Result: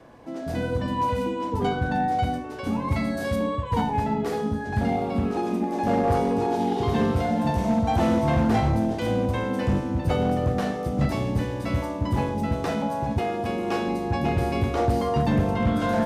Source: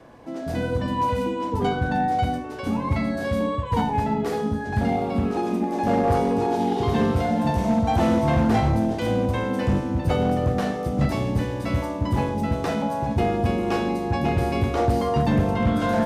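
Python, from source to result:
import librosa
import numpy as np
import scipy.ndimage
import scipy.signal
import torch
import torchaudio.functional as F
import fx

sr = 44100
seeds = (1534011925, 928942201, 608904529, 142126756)

y = fx.high_shelf(x, sr, hz=6100.0, db=9.0, at=(2.88, 3.36))
y = fx.highpass(y, sr, hz=fx.line((13.18, 510.0), (13.87, 130.0)), slope=6, at=(13.18, 13.87), fade=0.02)
y = F.gain(torch.from_numpy(y), -1.5).numpy()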